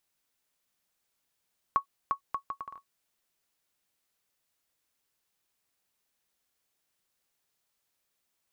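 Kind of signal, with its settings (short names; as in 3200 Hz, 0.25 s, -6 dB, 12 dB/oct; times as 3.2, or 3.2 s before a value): bouncing ball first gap 0.35 s, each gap 0.67, 1110 Hz, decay 98 ms -15 dBFS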